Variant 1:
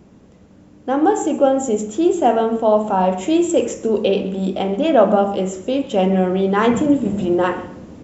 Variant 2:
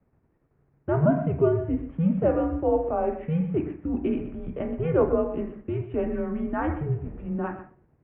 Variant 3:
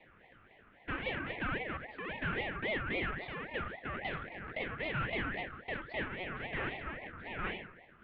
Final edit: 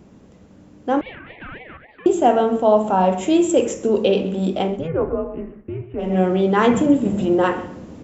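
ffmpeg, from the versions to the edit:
-filter_complex "[0:a]asplit=3[s0][s1][s2];[s0]atrim=end=1.012[s3];[2:a]atrim=start=1.008:end=2.062[s4];[s1]atrim=start=2.058:end=4.89[s5];[1:a]atrim=start=4.65:end=6.21[s6];[s2]atrim=start=5.97[s7];[s3][s4]acrossfade=d=0.004:c1=hsin:c2=hsin[s8];[s8][s5]acrossfade=d=0.004:c1=hsin:c2=hsin[s9];[s9][s6]acrossfade=d=0.24:c1=tri:c2=tri[s10];[s10][s7]acrossfade=d=0.24:c1=tri:c2=tri"

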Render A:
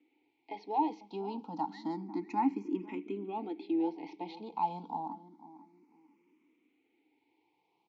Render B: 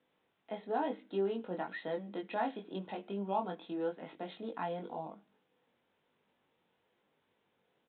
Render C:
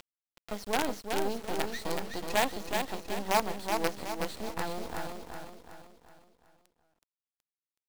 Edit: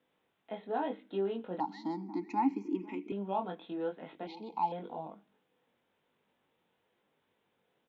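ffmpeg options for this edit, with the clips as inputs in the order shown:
-filter_complex "[0:a]asplit=2[s0][s1];[1:a]asplit=3[s2][s3][s4];[s2]atrim=end=1.602[s5];[s0]atrim=start=1.598:end=3.122[s6];[s3]atrim=start=3.118:end=4.272[s7];[s1]atrim=start=4.268:end=4.722[s8];[s4]atrim=start=4.718[s9];[s5][s6]acrossfade=d=0.004:c1=hsin:c2=hsin[s10];[s10][s7]acrossfade=d=0.004:c1=hsin:c2=hsin[s11];[s11][s8]acrossfade=d=0.004:c1=hsin:c2=hsin[s12];[s12][s9]acrossfade=d=0.004:c1=hsin:c2=hsin"

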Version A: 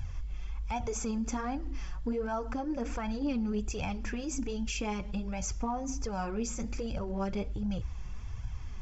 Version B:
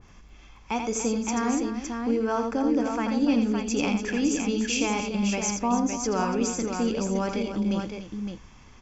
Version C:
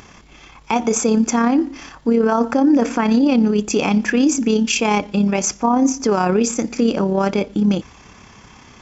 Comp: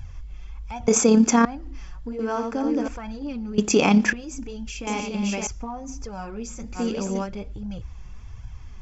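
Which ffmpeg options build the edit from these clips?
-filter_complex "[2:a]asplit=2[s0][s1];[1:a]asplit=3[s2][s3][s4];[0:a]asplit=6[s5][s6][s7][s8][s9][s10];[s5]atrim=end=0.882[s11];[s0]atrim=start=0.878:end=1.452[s12];[s6]atrim=start=1.448:end=2.192[s13];[s2]atrim=start=2.188:end=2.882[s14];[s7]atrim=start=2.878:end=3.582[s15];[s1]atrim=start=3.578:end=4.132[s16];[s8]atrim=start=4.128:end=4.872[s17];[s3]atrim=start=4.868:end=5.472[s18];[s9]atrim=start=5.468:end=6.8[s19];[s4]atrim=start=6.74:end=7.28[s20];[s10]atrim=start=7.22[s21];[s11][s12]acrossfade=d=0.004:c1=hsin:c2=hsin[s22];[s22][s13]acrossfade=d=0.004:c1=hsin:c2=hsin[s23];[s23][s14]acrossfade=d=0.004:c1=hsin:c2=hsin[s24];[s24][s15]acrossfade=d=0.004:c1=hsin:c2=hsin[s25];[s25][s16]acrossfade=d=0.004:c1=hsin:c2=hsin[s26];[s26][s17]acrossfade=d=0.004:c1=hsin:c2=hsin[s27];[s27][s18]acrossfade=d=0.004:c1=hsin:c2=hsin[s28];[s28][s19]acrossfade=d=0.004:c1=hsin:c2=hsin[s29];[s29][s20]acrossfade=d=0.06:c1=tri:c2=tri[s30];[s30][s21]acrossfade=d=0.06:c1=tri:c2=tri"

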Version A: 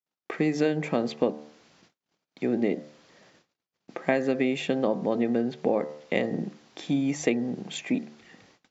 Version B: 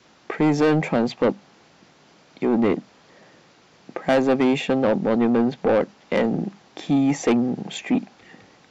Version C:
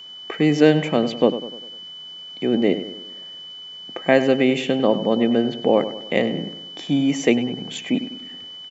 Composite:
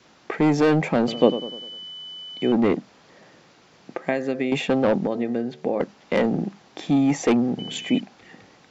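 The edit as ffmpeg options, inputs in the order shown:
-filter_complex "[2:a]asplit=2[s0][s1];[0:a]asplit=2[s2][s3];[1:a]asplit=5[s4][s5][s6][s7][s8];[s4]atrim=end=1.082[s9];[s0]atrim=start=1.078:end=2.522[s10];[s5]atrim=start=2.518:end=3.982[s11];[s2]atrim=start=3.978:end=4.522[s12];[s6]atrim=start=4.518:end=5.072[s13];[s3]atrim=start=5.068:end=5.802[s14];[s7]atrim=start=5.798:end=7.592[s15];[s1]atrim=start=7.588:end=8.002[s16];[s8]atrim=start=7.998[s17];[s9][s10]acrossfade=d=0.004:c1=hsin:c2=hsin[s18];[s18][s11]acrossfade=d=0.004:c1=hsin:c2=hsin[s19];[s19][s12]acrossfade=d=0.004:c1=hsin:c2=hsin[s20];[s20][s13]acrossfade=d=0.004:c1=hsin:c2=hsin[s21];[s21][s14]acrossfade=d=0.004:c1=hsin:c2=hsin[s22];[s22][s15]acrossfade=d=0.004:c1=hsin:c2=hsin[s23];[s23][s16]acrossfade=d=0.004:c1=hsin:c2=hsin[s24];[s24][s17]acrossfade=d=0.004:c1=hsin:c2=hsin"

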